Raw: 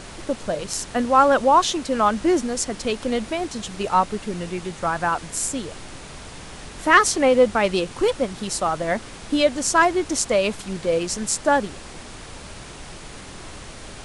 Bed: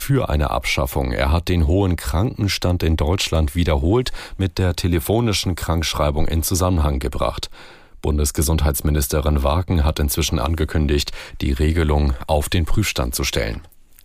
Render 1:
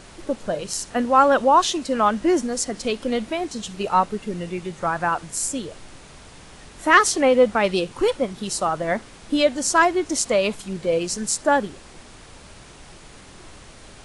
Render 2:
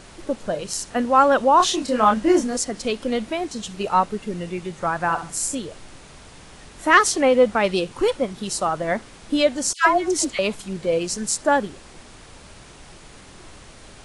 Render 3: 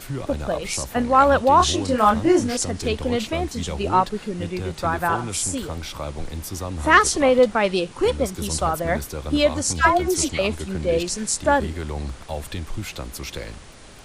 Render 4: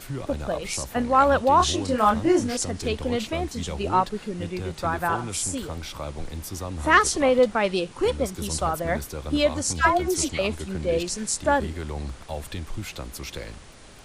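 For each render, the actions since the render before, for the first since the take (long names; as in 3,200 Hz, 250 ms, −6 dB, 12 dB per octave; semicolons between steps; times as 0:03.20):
noise reduction from a noise print 6 dB
0:01.57–0:02.57: double-tracking delay 28 ms −3 dB; 0:04.97–0:05.55: flutter between parallel walls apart 11.3 metres, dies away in 0.36 s; 0:09.73–0:10.39: all-pass dispersion lows, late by 136 ms, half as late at 1,200 Hz
mix in bed −12 dB
level −3 dB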